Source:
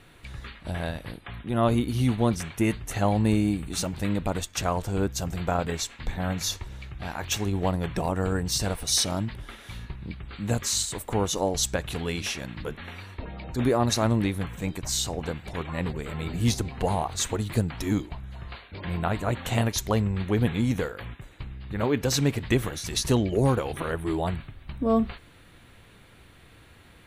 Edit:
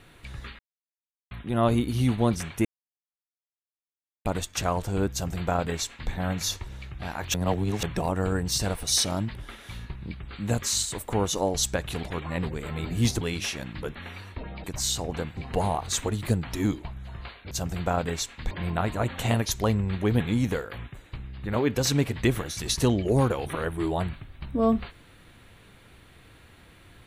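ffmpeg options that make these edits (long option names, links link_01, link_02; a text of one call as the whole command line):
ffmpeg -i in.wav -filter_complex "[0:a]asplit=13[link_01][link_02][link_03][link_04][link_05][link_06][link_07][link_08][link_09][link_10][link_11][link_12][link_13];[link_01]atrim=end=0.59,asetpts=PTS-STARTPTS,afade=type=out:start_time=0.586:duration=0.004:curve=hsin[link_14];[link_02]atrim=start=0.59:end=1.31,asetpts=PTS-STARTPTS,volume=0[link_15];[link_03]atrim=start=1.31:end=2.65,asetpts=PTS-STARTPTS,afade=type=in:duration=0.004:curve=hsin,afade=type=out:start_time=1.336:duration=0.004:curve=hsin[link_16];[link_04]atrim=start=2.65:end=4.25,asetpts=PTS-STARTPTS,volume=0[link_17];[link_05]atrim=start=4.25:end=7.342,asetpts=PTS-STARTPTS,afade=type=in:duration=0.004:curve=hsin[link_18];[link_06]atrim=start=7.338:end=7.832,asetpts=PTS-STARTPTS,areverse[link_19];[link_07]atrim=start=7.828:end=12.032[link_20];[link_08]atrim=start=15.458:end=16.642[link_21];[link_09]atrim=start=12.028:end=13.462[link_22];[link_10]atrim=start=14.728:end=15.462[link_23];[link_11]atrim=start=16.638:end=18.782[link_24];[link_12]atrim=start=5.118:end=6.122[link_25];[link_13]atrim=start=18.778[link_26];[link_14][link_15][link_16][link_17][link_18]concat=n=5:v=0:a=1[link_27];[link_27][link_19]acrossfade=duration=0.004:curve1=hsin:curve2=hsin[link_28];[link_28][link_20]acrossfade=duration=0.004:curve1=hsin:curve2=hsin[link_29];[link_29][link_21]acrossfade=duration=0.004:curve1=hsin:curve2=hsin[link_30];[link_30][link_22]acrossfade=duration=0.004:curve1=hsin:curve2=hsin[link_31];[link_31][link_23]acrossfade=duration=0.004:curve1=hsin:curve2=hsin[link_32];[link_32][link_24]acrossfade=duration=0.004:curve1=hsin:curve2=hsin[link_33];[link_33][link_25]acrossfade=duration=0.004:curve1=hsin:curve2=hsin[link_34];[link_34][link_26]acrossfade=duration=0.004:curve1=hsin:curve2=hsin" out.wav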